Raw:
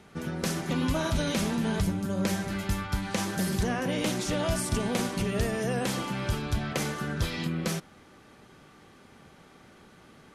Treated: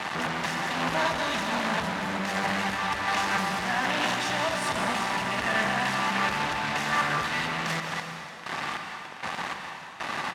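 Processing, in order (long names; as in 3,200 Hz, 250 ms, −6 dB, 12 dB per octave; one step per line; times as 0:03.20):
comb filter 1.1 ms, depth 87%
downward compressor 4 to 1, threshold −36 dBFS, peak gain reduction 15.5 dB
square-wave tremolo 1.3 Hz, depth 60%, duty 40%
fuzz pedal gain 57 dB, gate −51 dBFS
resonant band-pass 1,400 Hz, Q 0.69
on a send at −3.5 dB: convolution reverb RT60 2.5 s, pre-delay 118 ms
on the sum: highs frequency-modulated by the lows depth 0.16 ms
level −6.5 dB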